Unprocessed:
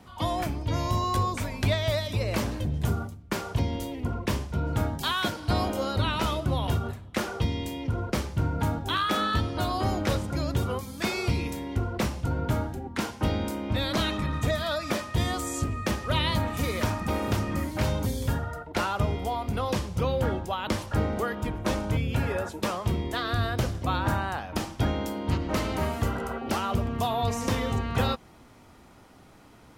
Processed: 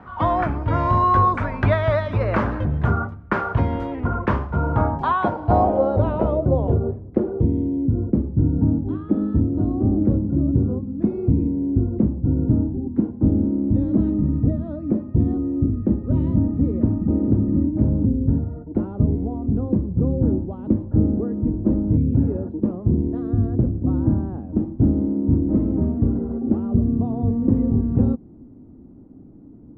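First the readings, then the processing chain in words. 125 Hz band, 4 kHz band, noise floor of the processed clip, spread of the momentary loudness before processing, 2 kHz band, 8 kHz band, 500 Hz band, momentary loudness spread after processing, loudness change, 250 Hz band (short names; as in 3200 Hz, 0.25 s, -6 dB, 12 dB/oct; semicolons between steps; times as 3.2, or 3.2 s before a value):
+7.5 dB, under -15 dB, -43 dBFS, 4 LU, n/a, under -30 dB, +5.5 dB, 5 LU, +7.5 dB, +12.0 dB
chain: low-pass sweep 1400 Hz -> 280 Hz, 4.19–7.92; gain +6.5 dB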